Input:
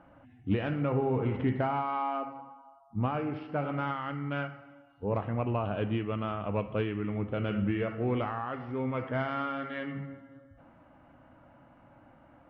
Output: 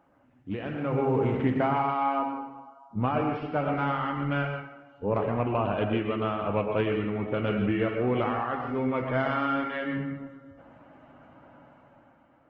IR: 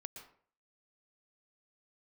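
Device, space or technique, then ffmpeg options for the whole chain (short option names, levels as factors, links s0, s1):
far-field microphone of a smart speaker: -filter_complex "[1:a]atrim=start_sample=2205[s0];[0:a][s0]afir=irnorm=-1:irlink=0,highpass=f=140:p=1,dynaudnorm=f=160:g=11:m=3.16" -ar 48000 -c:a libopus -b:a 16k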